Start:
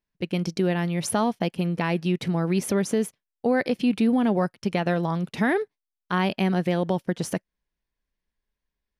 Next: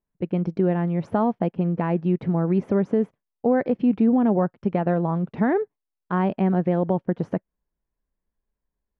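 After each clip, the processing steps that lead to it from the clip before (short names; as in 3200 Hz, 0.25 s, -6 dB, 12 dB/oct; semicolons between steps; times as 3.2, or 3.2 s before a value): LPF 1100 Hz 12 dB/oct; gain +2.5 dB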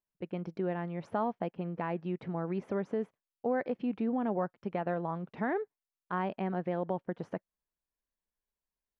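low shelf 410 Hz -11 dB; gain -5.5 dB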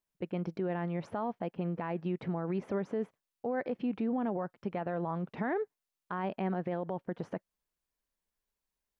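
limiter -29 dBFS, peak gain reduction 8.5 dB; gain +3.5 dB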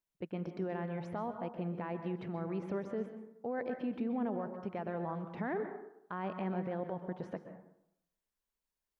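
plate-style reverb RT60 0.76 s, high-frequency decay 0.45×, pre-delay 0.115 s, DRR 7.5 dB; gain -4 dB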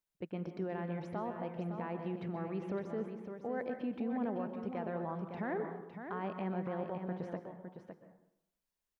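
echo 0.559 s -8 dB; gain -1 dB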